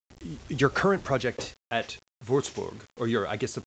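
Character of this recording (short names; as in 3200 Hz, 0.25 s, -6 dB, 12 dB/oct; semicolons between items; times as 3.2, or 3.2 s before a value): a quantiser's noise floor 8-bit, dither none; µ-law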